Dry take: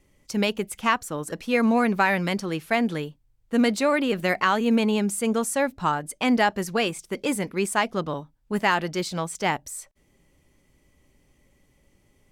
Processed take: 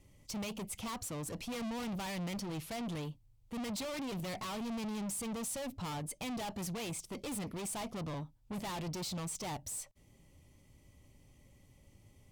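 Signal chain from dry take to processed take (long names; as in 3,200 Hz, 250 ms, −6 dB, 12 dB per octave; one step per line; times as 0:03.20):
tube saturation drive 37 dB, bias 0.3
graphic EQ with 15 bands 100 Hz +9 dB, 400 Hz −4 dB, 1,600 Hz −8 dB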